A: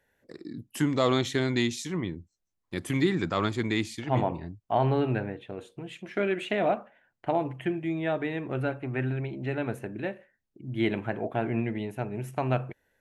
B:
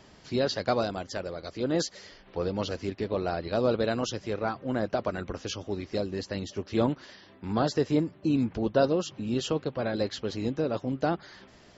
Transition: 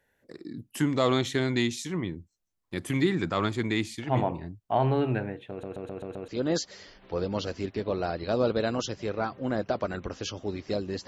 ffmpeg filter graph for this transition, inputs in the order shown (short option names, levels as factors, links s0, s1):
-filter_complex "[0:a]apad=whole_dur=11.07,atrim=end=11.07,asplit=6[s0][s1][s2][s3][s4][s5];[s0]atrim=end=5.632[s6];[s1]atrim=start=5.498:end=5.632[s7];[s2]atrim=start=5.498:end=5.632[s8];[s3]atrim=start=5.498:end=5.632[s9];[s4]atrim=start=5.498:end=5.632[s10];[s5]atrim=start=5.498:end=5.632[s11];[1:a]atrim=start=1.518:end=6.31[s12];[s6][s7]acrossfade=d=0.004:c1=hsin:c2=hsin[s13];[s13][s8]acrossfade=d=0.004:c1=hsin:c2=hsin[s14];[s14][s9]acrossfade=d=0.004:c1=hsin:c2=hsin[s15];[s15][s10]acrossfade=d=0.004:c1=hsin:c2=hsin[s16];[s16][s11]acrossfade=d=0.004:c1=hsin:c2=hsin[s17];[s17][s12]acrossfade=d=0.004:c1=hsin:c2=hsin"